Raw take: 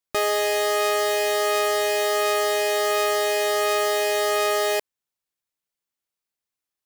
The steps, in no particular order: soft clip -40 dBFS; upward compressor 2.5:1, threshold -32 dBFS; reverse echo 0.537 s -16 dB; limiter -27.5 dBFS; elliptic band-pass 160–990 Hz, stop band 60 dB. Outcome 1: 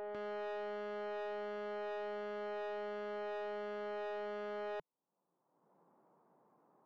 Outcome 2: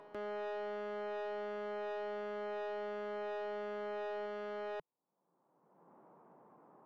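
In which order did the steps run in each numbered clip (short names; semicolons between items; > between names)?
upward compressor > elliptic band-pass > reverse echo > limiter > soft clip; elliptic band-pass > upward compressor > limiter > soft clip > reverse echo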